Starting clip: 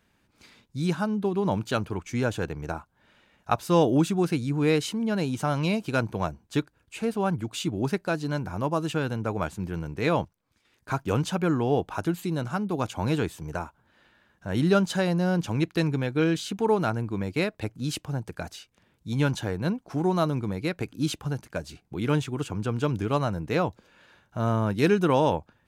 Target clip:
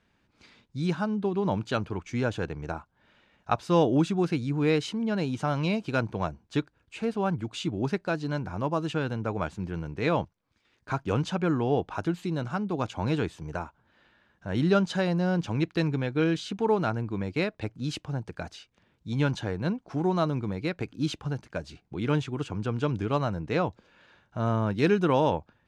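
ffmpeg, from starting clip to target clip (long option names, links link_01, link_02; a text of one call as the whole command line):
ffmpeg -i in.wav -af "lowpass=5600,volume=-1.5dB" out.wav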